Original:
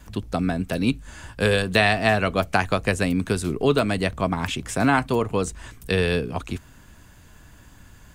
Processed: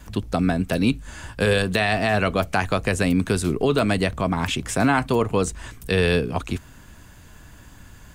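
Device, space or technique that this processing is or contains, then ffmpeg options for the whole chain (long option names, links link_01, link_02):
clipper into limiter: -af "asoftclip=type=hard:threshold=-5dB,alimiter=limit=-12.5dB:level=0:latency=1:release=37,volume=3dB"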